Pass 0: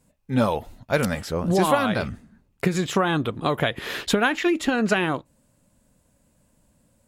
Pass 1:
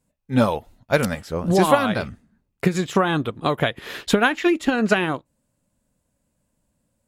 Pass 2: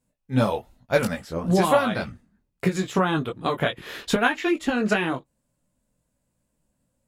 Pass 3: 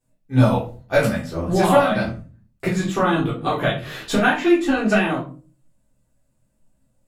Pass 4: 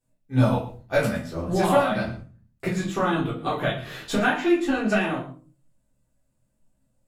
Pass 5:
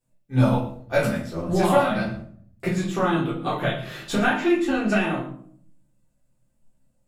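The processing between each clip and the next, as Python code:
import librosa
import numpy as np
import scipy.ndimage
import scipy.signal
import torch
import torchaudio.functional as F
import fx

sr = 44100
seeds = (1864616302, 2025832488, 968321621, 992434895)

y1 = fx.upward_expand(x, sr, threshold_db=-41.0, expansion=1.5)
y1 = y1 * librosa.db_to_amplitude(4.5)
y2 = fx.chorus_voices(y1, sr, voices=6, hz=0.61, base_ms=20, depth_ms=4.6, mix_pct=40)
y3 = fx.room_shoebox(y2, sr, seeds[0], volume_m3=190.0, walls='furnished', distance_m=3.6)
y3 = y3 * librosa.db_to_amplitude(-4.0)
y4 = y3 + 10.0 ** (-15.5 / 20.0) * np.pad(y3, (int(112 * sr / 1000.0), 0))[:len(y3)]
y4 = y4 * librosa.db_to_amplitude(-4.5)
y5 = fx.room_shoebox(y4, sr, seeds[1], volume_m3=990.0, walls='furnished', distance_m=0.89)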